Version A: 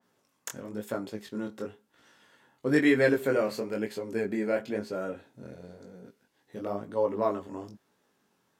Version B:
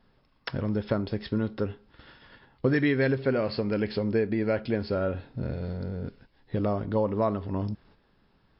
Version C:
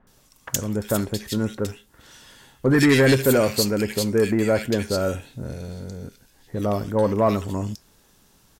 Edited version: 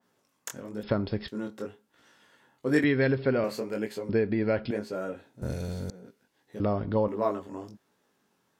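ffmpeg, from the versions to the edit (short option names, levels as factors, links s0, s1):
-filter_complex "[1:a]asplit=4[s0][s1][s2][s3];[0:a]asplit=6[s4][s5][s6][s7][s8][s9];[s4]atrim=end=0.832[s10];[s0]atrim=start=0.828:end=1.282[s11];[s5]atrim=start=1.278:end=2.842[s12];[s1]atrim=start=2.838:end=3.442[s13];[s6]atrim=start=3.438:end=4.092[s14];[s2]atrim=start=4.088:end=4.712[s15];[s7]atrim=start=4.708:end=5.422[s16];[2:a]atrim=start=5.418:end=5.902[s17];[s8]atrim=start=5.898:end=6.602[s18];[s3]atrim=start=6.598:end=7.082[s19];[s9]atrim=start=7.078[s20];[s10][s11]acrossfade=d=0.004:c1=hsin:c2=hsin[s21];[s21][s12]acrossfade=d=0.004:c1=hsin:c2=hsin[s22];[s22][s13]acrossfade=d=0.004:c1=hsin:c2=hsin[s23];[s23][s14]acrossfade=d=0.004:c1=hsin:c2=hsin[s24];[s24][s15]acrossfade=d=0.004:c1=hsin:c2=hsin[s25];[s25][s16]acrossfade=d=0.004:c1=hsin:c2=hsin[s26];[s26][s17]acrossfade=d=0.004:c1=hsin:c2=hsin[s27];[s27][s18]acrossfade=d=0.004:c1=hsin:c2=hsin[s28];[s28][s19]acrossfade=d=0.004:c1=hsin:c2=hsin[s29];[s29][s20]acrossfade=d=0.004:c1=hsin:c2=hsin"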